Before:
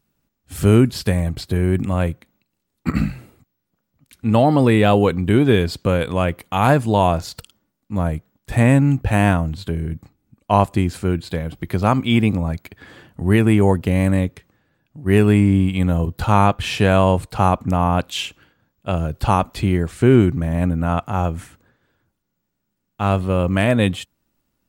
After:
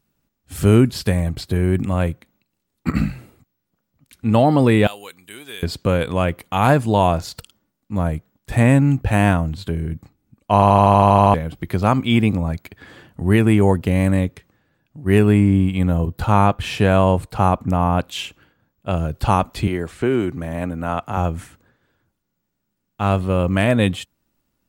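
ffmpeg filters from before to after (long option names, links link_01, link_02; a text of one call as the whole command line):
ffmpeg -i in.wav -filter_complex "[0:a]asettb=1/sr,asplit=3[link_01][link_02][link_03];[link_01]atrim=end=4.874[link_04];[link_02]atrim=start=4.87:end=5.63,asetpts=PTS-STARTPTS,afade=type=in:duration=0.004:curve=qsin,afade=type=out:start_time=0.756:duration=0.004:curve=qsin,aderivative[link_05];[link_03]atrim=start=5.626[link_06];[link_04][link_05]acrossfade=duration=0.004:curve1=hsin:curve2=qsin[link_07];[link_07][link_06]acrossfade=duration=0.004:curve1=qsin:curve2=hsin,asettb=1/sr,asplit=3[link_08][link_09][link_10];[link_08]atrim=end=15.194[link_11];[link_09]atrim=start=15.19:end=18.91,asetpts=PTS-STARTPTS,afade=type=in:duration=0.004:curve=qsin,afade=type=out:start_time=3.716:duration=0.004:curve=qsin,equalizer=frequency=5300:width=0.4:gain=-3.5[link_12];[link_10]atrim=start=18.906[link_13];[link_11][link_12]acrossfade=duration=0.004:curve1=hsin:curve2=qsin[link_14];[link_14][link_13]acrossfade=duration=0.004:curve1=qsin:curve2=hsin,asettb=1/sr,asplit=3[link_15][link_16][link_17];[link_15]atrim=end=19.674[link_18];[link_16]atrim=start=19.67:end=21.17,asetpts=PTS-STARTPTS,afade=type=in:duration=0.004:curve=qsin,afade=type=out:start_time=1.496:duration=0.004:curve=qsin,acrossover=split=270|4000[link_19][link_20][link_21];[link_19]acompressor=threshold=-29dB:ratio=4[link_22];[link_20]acompressor=threshold=-16dB:ratio=4[link_23];[link_21]acompressor=threshold=-48dB:ratio=4[link_24];[link_22][link_23][link_24]amix=inputs=3:normalize=0[link_25];[link_17]atrim=start=21.166[link_26];[link_18][link_25]acrossfade=duration=0.004:curve1=hsin:curve2=qsin[link_27];[link_27][link_26]acrossfade=duration=0.004:curve1=qsin:curve2=hsin,asplit=11[link_28][link_29][link_30][link_31][link_32][link_33][link_34][link_35][link_36][link_37][link_38];[link_28]atrim=end=10.622[link_39];[link_29]atrim=start=10.538:end=10.622[link_40];[link_30]atrim=start=10.538:end=10.622[link_41];[link_31]atrim=start=10.538:end=10.622[link_42];[link_32]atrim=start=10.538:end=10.622[link_43];[link_33]atrim=start=10.538:end=10.622[link_44];[link_34]atrim=start=10.538:end=10.622[link_45];[link_35]atrim=start=10.538:end=10.622[link_46];[link_36]atrim=start=10.538:end=10.622[link_47];[link_37]atrim=start=10.538:end=10.622[link_48];[link_38]atrim=start=11.338[link_49];[link_39][link_40]acrossfade=duration=0.004:curve1=hsin:curve2=hsin[link_50];[link_50][link_41]acrossfade=duration=0.004:curve1=hsin:curve2=hsin[link_51];[link_51][link_42]acrossfade=duration=0.004:curve1=hsin:curve2=hsin[link_52];[link_52][link_43]acrossfade=duration=0.004:curve1=hsin:curve2=hsin[link_53];[link_53][link_44]acrossfade=duration=0.004:curve1=hsin:curve2=hsin[link_54];[link_54][link_45]acrossfade=duration=0.004:curve1=hsin:curve2=hsin[link_55];[link_55][link_46]acrossfade=duration=0.004:curve1=hsin:curve2=hsin[link_56];[link_56][link_47]acrossfade=duration=0.004:curve1=hsin:curve2=hsin[link_57];[link_57][link_48]acrossfade=duration=0.004:curve1=hsin:curve2=hsin[link_58];[link_58][link_49]acrossfade=duration=0.004:curve1=hsin:curve2=hsin" out.wav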